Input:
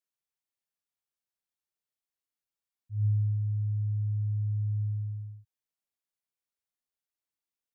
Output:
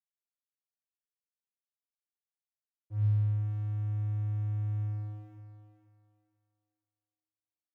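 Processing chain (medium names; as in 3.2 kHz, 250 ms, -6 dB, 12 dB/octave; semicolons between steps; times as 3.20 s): crossover distortion -49 dBFS; on a send: thinning echo 483 ms, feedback 30%, high-pass 160 Hz, level -9 dB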